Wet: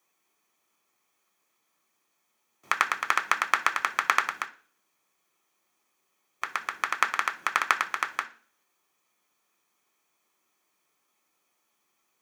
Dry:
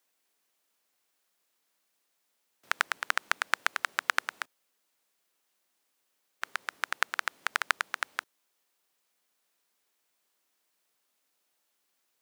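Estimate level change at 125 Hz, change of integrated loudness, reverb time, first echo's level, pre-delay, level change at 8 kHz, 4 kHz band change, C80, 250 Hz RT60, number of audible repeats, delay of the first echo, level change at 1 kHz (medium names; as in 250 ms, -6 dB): no reading, +4.5 dB, 0.45 s, no echo, 3 ms, +3.0 dB, +1.0 dB, 21.0 dB, 0.65 s, no echo, no echo, +7.5 dB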